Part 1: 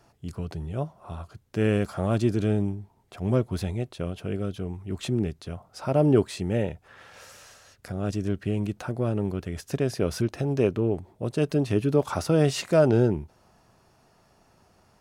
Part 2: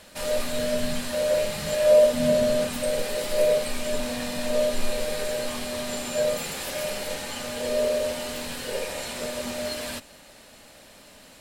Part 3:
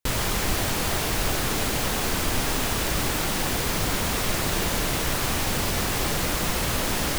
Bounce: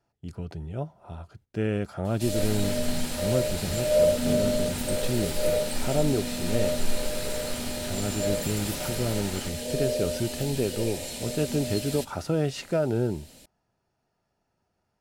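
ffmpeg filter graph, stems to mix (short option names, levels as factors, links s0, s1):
-filter_complex "[0:a]agate=range=0.224:threshold=0.00316:ratio=16:detection=peak,highshelf=f=5200:g=6,volume=0.75[s0];[1:a]equalizer=f=1300:t=o:w=1.8:g=-14,adelay=2050,volume=1.12[s1];[2:a]asoftclip=type=hard:threshold=0.0422,adelay=2300,volume=0.473[s2];[s0][s2]amix=inputs=2:normalize=0,highshelf=f=6000:g=-12,alimiter=limit=0.158:level=0:latency=1:release=439,volume=1[s3];[s1][s3]amix=inputs=2:normalize=0,asuperstop=centerf=1100:order=4:qfactor=8"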